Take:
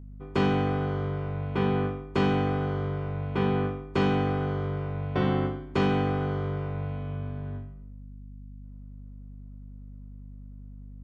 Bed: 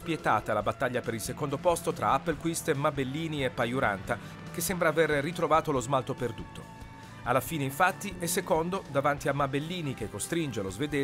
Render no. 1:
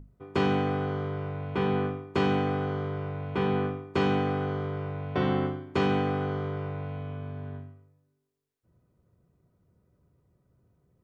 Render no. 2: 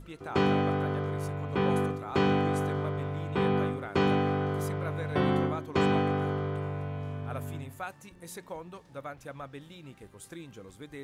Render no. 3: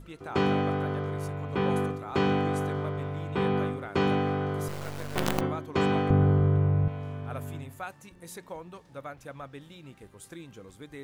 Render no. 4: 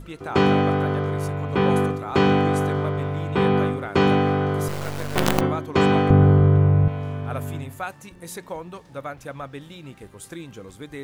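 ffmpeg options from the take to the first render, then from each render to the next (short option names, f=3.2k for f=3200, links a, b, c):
-af "bandreject=f=50:t=h:w=6,bandreject=f=100:t=h:w=6,bandreject=f=150:t=h:w=6,bandreject=f=200:t=h:w=6,bandreject=f=250:t=h:w=6"
-filter_complex "[1:a]volume=-14dB[a];[0:a][a]amix=inputs=2:normalize=0"
-filter_complex "[0:a]asettb=1/sr,asplit=3[a][b][c];[a]atrim=end=4.684[d];[b]atrim=start=4.68:end=5.41,asetpts=PTS-STARTPTS,afade=t=in:d=0.004:c=qsin,afade=t=out:st=0.726:d=0.004:c=qsin,acrusher=bits=4:dc=4:mix=0:aa=0.000001[e];[c]atrim=start=5.406[f];[d][e]acrossfade=d=0.004:c1=hsin:c2=qsin[g];[g][f]acrossfade=d=0.004:c1=qsin:c2=hsin,asettb=1/sr,asplit=3[h][i][j];[h]atrim=end=6.104[k];[i]atrim=start=6.1:end=6.88,asetpts=PTS-STARTPTS,afade=t=in:d=0.004:c=qsin,afade=t=out:st=0.776:d=0.004:c=qsin,aemphasis=mode=reproduction:type=riaa[l];[j]atrim=start=6.876[m];[k][l]acrossfade=d=0.004:c1=hsin:c2=qsin[n];[n][m]acrossfade=d=0.004:c1=qsin:c2=hsin"
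-af "volume=7.5dB"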